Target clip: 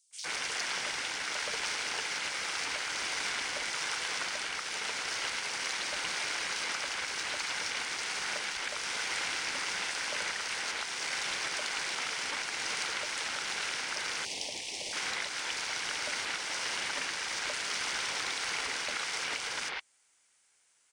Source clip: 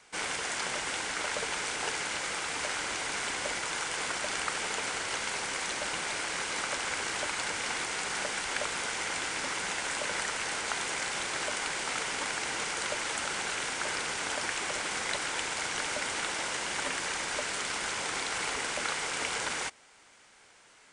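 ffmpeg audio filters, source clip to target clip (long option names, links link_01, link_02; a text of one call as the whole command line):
ffmpeg -i in.wav -filter_complex "[0:a]afwtdn=0.0112,alimiter=limit=-23.5dB:level=0:latency=1:release=368,asettb=1/sr,asplit=3[link_01][link_02][link_03];[link_01]atrim=end=14.144[link_04];[link_02]atrim=start=14.14:end=14.82,asetpts=PTS-STARTPTS,afade=type=in:duration=0.004:curve=qsin,afade=type=out:start_time=0.676:duration=0.004:curve=qsin,asuperstop=centerf=1400:order=4:qfactor=0.78[link_05];[link_03]atrim=start=14.816[link_06];[link_04][link_05]acrossfade=duration=0.004:curve1=hsin:curve2=qsin[link_07];[link_07][link_06]acrossfade=duration=0.004:curve1=qsin:curve2=hsin,acrossover=split=4000[link_08][link_09];[link_08]adelay=110[link_10];[link_10][link_09]amix=inputs=2:normalize=0,crystalizer=i=6.5:c=0,volume=-5.5dB" out.wav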